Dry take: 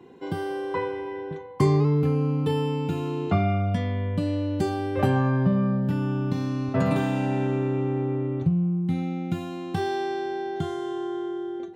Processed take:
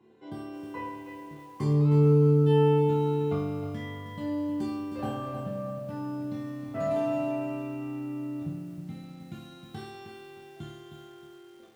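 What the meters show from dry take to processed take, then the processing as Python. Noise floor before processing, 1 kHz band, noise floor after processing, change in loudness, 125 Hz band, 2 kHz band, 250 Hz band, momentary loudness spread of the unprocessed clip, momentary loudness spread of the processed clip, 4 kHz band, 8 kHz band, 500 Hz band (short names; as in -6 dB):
-34 dBFS, -6.5 dB, -50 dBFS, -2.0 dB, -3.0 dB, -10.0 dB, -5.0 dB, 9 LU, 23 LU, -7.0 dB, n/a, -1.5 dB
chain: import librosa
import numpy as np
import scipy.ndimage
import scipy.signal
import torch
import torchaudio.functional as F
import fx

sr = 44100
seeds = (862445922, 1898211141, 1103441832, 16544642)

y = fx.resonator_bank(x, sr, root=38, chord='fifth', decay_s=0.66)
y = fx.echo_crushed(y, sr, ms=313, feedback_pct=35, bits=10, wet_db=-8.5)
y = y * 10.0 ** (5.5 / 20.0)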